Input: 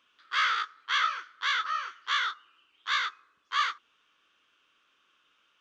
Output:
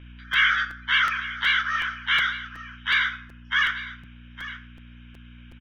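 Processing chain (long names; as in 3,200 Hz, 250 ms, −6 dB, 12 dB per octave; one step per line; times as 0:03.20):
spectral magnitudes quantised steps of 30 dB
Chebyshev low-pass filter 6,100 Hz, order 5
flat-topped bell 2,100 Hz +8.5 dB 1.2 octaves
notch filter 4,300 Hz, Q 5.9
comb filter 1.3 ms, depth 37%
in parallel at +2 dB: downward compressor, threshold −33 dBFS, peak gain reduction 15.5 dB
on the sum: mains hum 60 Hz, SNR 18 dB
single-tap delay 858 ms −14.5 dB
on a send at −9 dB: convolution reverb RT60 0.60 s, pre-delay 4 ms
on the sum: regular buffer underruns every 0.37 s, samples 256, repeat, from 0:00.33
level −1.5 dB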